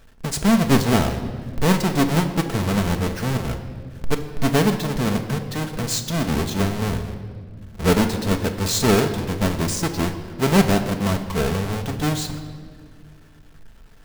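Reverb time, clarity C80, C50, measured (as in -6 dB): 1.9 s, 11.0 dB, 9.5 dB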